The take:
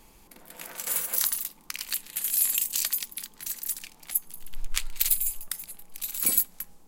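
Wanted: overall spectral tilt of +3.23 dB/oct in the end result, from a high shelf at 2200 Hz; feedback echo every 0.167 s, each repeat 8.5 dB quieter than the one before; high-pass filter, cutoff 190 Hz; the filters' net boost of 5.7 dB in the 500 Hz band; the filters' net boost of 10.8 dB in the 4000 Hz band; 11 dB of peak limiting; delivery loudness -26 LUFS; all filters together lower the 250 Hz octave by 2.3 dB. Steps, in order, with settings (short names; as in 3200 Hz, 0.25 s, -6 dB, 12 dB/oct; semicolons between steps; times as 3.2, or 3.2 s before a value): HPF 190 Hz; bell 250 Hz -3.5 dB; bell 500 Hz +7 dB; high shelf 2200 Hz +6 dB; bell 4000 Hz +7.5 dB; limiter -8.5 dBFS; feedback echo 0.167 s, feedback 38%, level -8.5 dB; gain -3.5 dB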